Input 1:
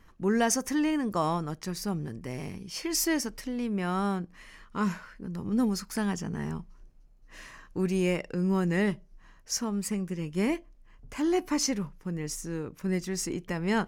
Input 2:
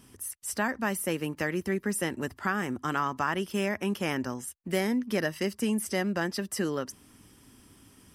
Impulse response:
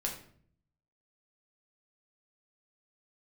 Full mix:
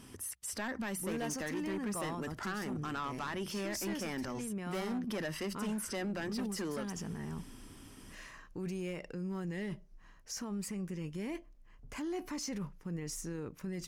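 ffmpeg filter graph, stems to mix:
-filter_complex "[0:a]adelay=800,volume=-3.5dB[link_01];[1:a]highshelf=frequency=12000:gain=-9,bandreject=frequency=60:width_type=h:width=6,bandreject=frequency=120:width_type=h:width=6,bandreject=frequency=180:width_type=h:width=6,asoftclip=type=tanh:threshold=-25dB,volume=3dB[link_02];[link_01][link_02]amix=inputs=2:normalize=0,asoftclip=type=hard:threshold=-23dB,alimiter=level_in=8dB:limit=-24dB:level=0:latency=1:release=23,volume=-8dB"

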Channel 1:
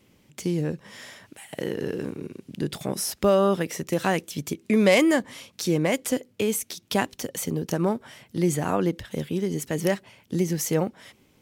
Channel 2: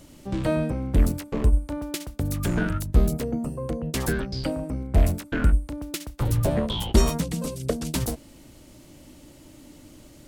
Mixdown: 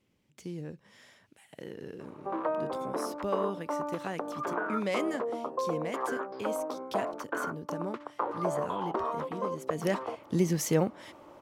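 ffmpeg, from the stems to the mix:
ffmpeg -i stem1.wav -i stem2.wav -filter_complex "[0:a]highshelf=frequency=9400:gain=-7.5,volume=-2dB,afade=type=in:start_time=9.66:duration=0.43:silence=0.266073[link_01];[1:a]highpass=frequency=370:width=0.5412,highpass=frequency=370:width=1.3066,acompressor=threshold=-33dB:ratio=6,lowpass=frequency=1100:width_type=q:width=3.5,adelay=2000,volume=1.5dB[link_02];[link_01][link_02]amix=inputs=2:normalize=0" out.wav

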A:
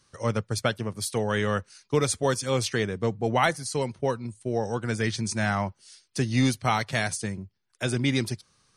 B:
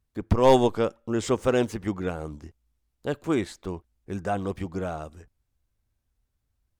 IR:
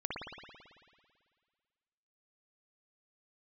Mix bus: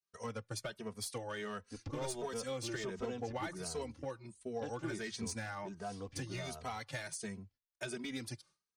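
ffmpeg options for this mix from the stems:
-filter_complex "[0:a]lowshelf=frequency=180:gain=-9.5,acompressor=threshold=-29dB:ratio=12,volume=-4.5dB[link_01];[1:a]acompressor=threshold=-24dB:ratio=6,lowpass=frequency=5600:width_type=q:width=2,adelay=1550,volume=-12dB[link_02];[link_01][link_02]amix=inputs=2:normalize=0,agate=range=-33dB:threshold=-56dB:ratio=3:detection=peak,aeval=exprs='clip(val(0),-1,0.0266)':channel_layout=same,asplit=2[link_03][link_04];[link_04]adelay=2.8,afreqshift=1.4[link_05];[link_03][link_05]amix=inputs=2:normalize=1"

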